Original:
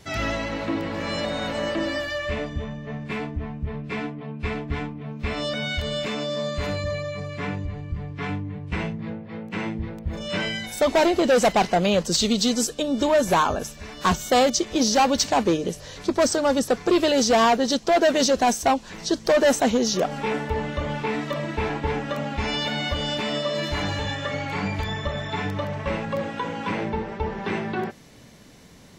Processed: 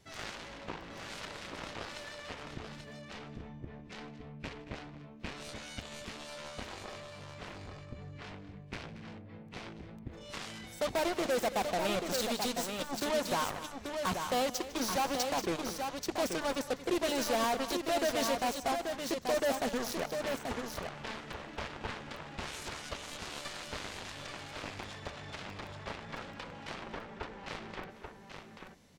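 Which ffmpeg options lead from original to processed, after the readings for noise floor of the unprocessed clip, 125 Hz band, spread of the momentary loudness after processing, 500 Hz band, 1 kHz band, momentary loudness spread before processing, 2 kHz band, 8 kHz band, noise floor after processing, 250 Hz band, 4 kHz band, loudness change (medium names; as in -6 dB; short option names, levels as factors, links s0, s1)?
-42 dBFS, -16.5 dB, 16 LU, -13.0 dB, -12.0 dB, 12 LU, -11.5 dB, -11.5 dB, -51 dBFS, -14.5 dB, -12.0 dB, -12.5 dB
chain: -af "aeval=exprs='0.224*(cos(1*acos(clip(val(0)/0.224,-1,1)))-cos(1*PI/2))+0.0891*(cos(3*acos(clip(val(0)/0.224,-1,1)))-cos(3*PI/2))':c=same,asoftclip=type=tanh:threshold=0.0422,aecho=1:1:153|228|834:0.112|0.188|0.531"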